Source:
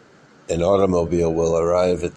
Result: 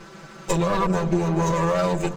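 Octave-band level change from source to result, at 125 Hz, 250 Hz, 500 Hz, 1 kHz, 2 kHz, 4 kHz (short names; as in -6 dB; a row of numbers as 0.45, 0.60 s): +2.0, -0.5, -7.0, +2.0, +5.0, +0.5 dB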